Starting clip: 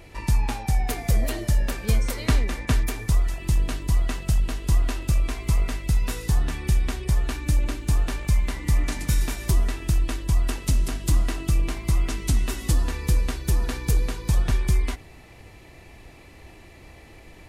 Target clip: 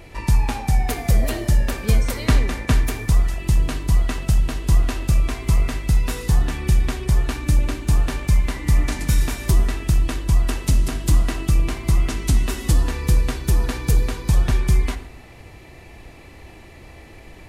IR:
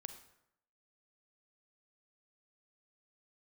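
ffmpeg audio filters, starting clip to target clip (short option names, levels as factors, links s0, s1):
-filter_complex "[0:a]asplit=2[s0][s1];[s1]lowpass=f=3500:p=1[s2];[1:a]atrim=start_sample=2205,highshelf=f=8600:g=9.5[s3];[s2][s3]afir=irnorm=-1:irlink=0,volume=2.99[s4];[s0][s4]amix=inputs=2:normalize=0,volume=0.596"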